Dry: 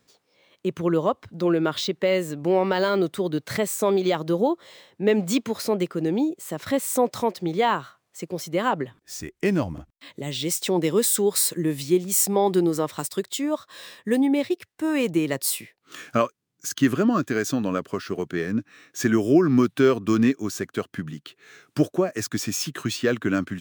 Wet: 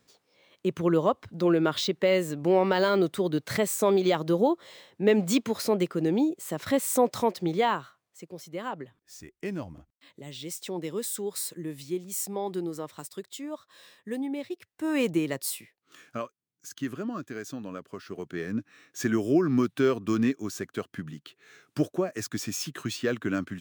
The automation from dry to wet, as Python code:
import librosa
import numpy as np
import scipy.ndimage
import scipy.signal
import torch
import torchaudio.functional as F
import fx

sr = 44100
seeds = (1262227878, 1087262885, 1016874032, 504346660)

y = fx.gain(x, sr, db=fx.line((7.5, -1.5), (8.26, -11.5), (14.48, -11.5), (15.02, -2.0), (16.0, -13.0), (17.83, -13.0), (18.54, -5.5)))